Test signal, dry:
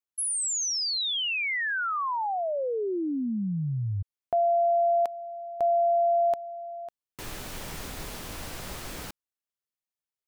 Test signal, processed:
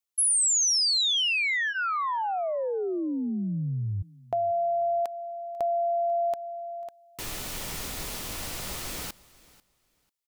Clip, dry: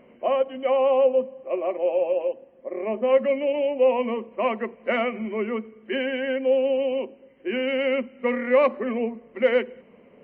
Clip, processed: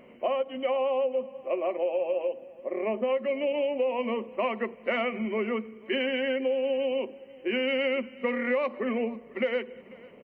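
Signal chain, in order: compression 6:1, threshold -25 dBFS; treble shelf 2.4 kHz +6.5 dB; band-stop 1.6 kHz, Q 16; feedback delay 493 ms, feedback 19%, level -22 dB

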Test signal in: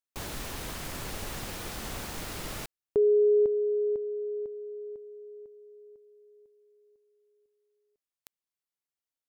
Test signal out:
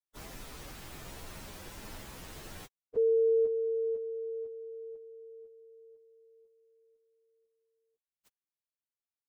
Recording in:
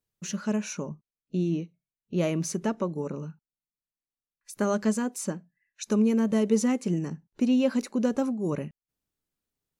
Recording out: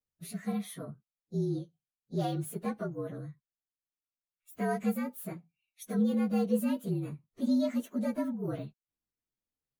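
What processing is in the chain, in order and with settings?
frequency axis rescaled in octaves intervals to 116%; trim -4 dB

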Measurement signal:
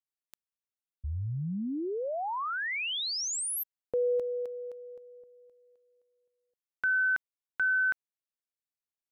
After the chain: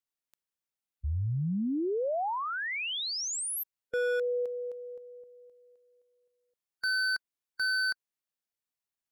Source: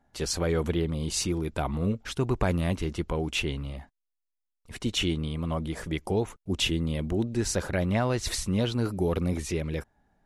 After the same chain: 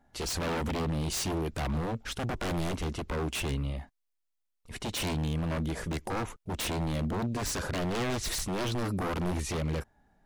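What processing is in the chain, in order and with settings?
wavefolder -27.5 dBFS; harmonic-percussive split percussive -4 dB; trim +3 dB

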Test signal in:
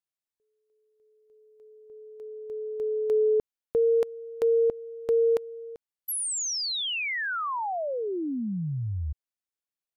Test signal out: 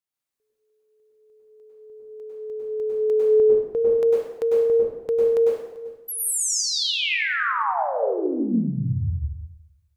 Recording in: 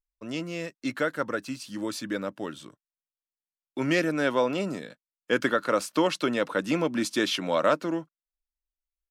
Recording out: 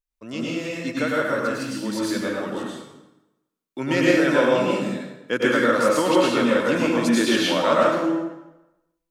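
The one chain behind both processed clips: plate-style reverb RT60 0.97 s, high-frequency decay 0.8×, pre-delay 90 ms, DRR -5.5 dB

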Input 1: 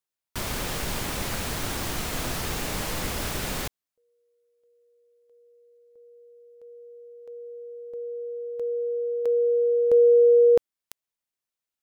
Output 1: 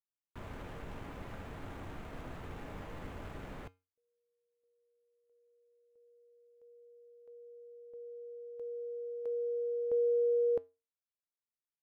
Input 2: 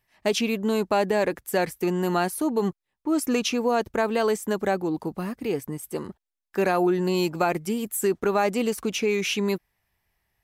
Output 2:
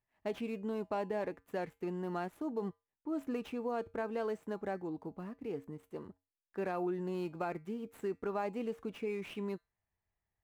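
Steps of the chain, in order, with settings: median filter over 9 samples; treble shelf 2.6 kHz -9.5 dB; feedback comb 92 Hz, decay 0.27 s, harmonics odd, mix 50%; trim -8 dB

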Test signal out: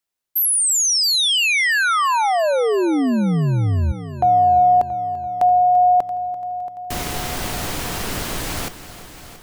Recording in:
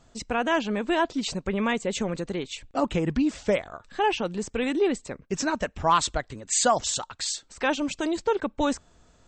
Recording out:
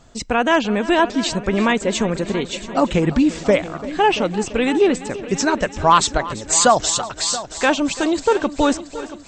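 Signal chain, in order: multi-head delay 339 ms, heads first and second, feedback 51%, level -17 dB; trim +8 dB

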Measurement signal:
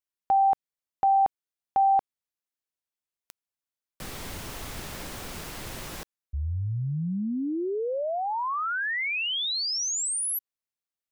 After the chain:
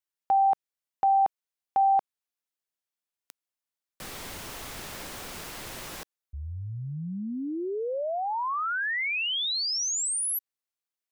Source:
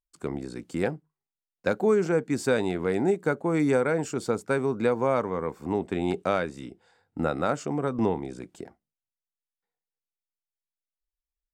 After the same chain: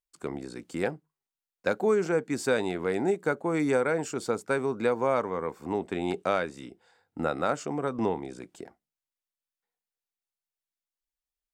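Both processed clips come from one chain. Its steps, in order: bass shelf 250 Hz -7.5 dB

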